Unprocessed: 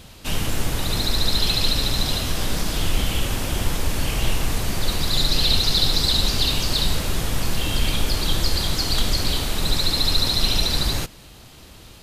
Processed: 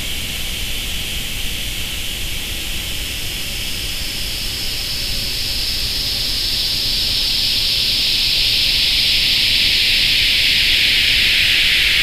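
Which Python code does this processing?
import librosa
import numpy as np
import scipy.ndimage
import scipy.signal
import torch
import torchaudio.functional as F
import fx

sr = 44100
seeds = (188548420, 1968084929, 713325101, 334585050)

y = fx.spec_paint(x, sr, seeds[0], shape='fall', start_s=3.36, length_s=0.63, low_hz=320.0, high_hz=5600.0, level_db=-19.0)
y = fx.paulstretch(y, sr, seeds[1], factor=28.0, window_s=0.5, from_s=3.09)
y = fx.high_shelf_res(y, sr, hz=1700.0, db=8.5, q=1.5)
y = F.gain(torch.from_numpy(y), -5.0).numpy()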